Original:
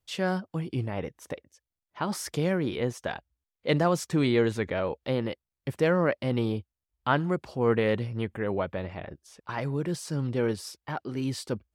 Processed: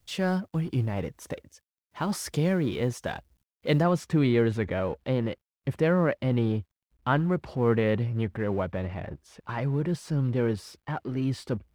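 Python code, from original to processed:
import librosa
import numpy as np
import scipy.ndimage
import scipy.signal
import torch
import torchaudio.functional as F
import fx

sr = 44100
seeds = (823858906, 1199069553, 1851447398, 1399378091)

y = fx.law_mismatch(x, sr, coded='mu')
y = fx.bass_treble(y, sr, bass_db=5, treble_db=fx.steps((0.0, 0.0), (3.81, -9.0)))
y = F.gain(torch.from_numpy(y), -1.5).numpy()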